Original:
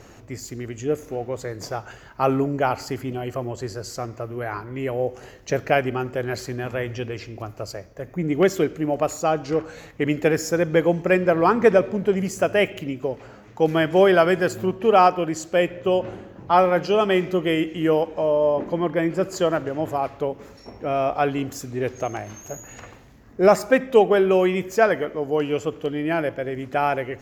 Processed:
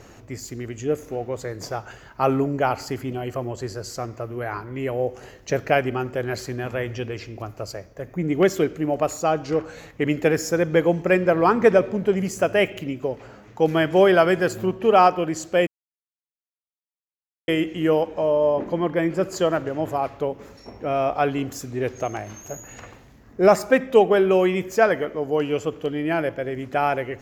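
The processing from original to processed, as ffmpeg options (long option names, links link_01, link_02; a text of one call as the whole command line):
ffmpeg -i in.wav -filter_complex "[0:a]asplit=3[link_01][link_02][link_03];[link_01]atrim=end=15.67,asetpts=PTS-STARTPTS,afade=type=out:start_time=15.666:duration=0.004:curve=hsin[link_04];[link_02]atrim=start=15.67:end=17.48,asetpts=PTS-STARTPTS,volume=0[link_05];[link_03]atrim=start=17.48,asetpts=PTS-STARTPTS,afade=type=in:duration=0.004:curve=hsin[link_06];[link_04][link_05][link_06]concat=n=3:v=0:a=1" out.wav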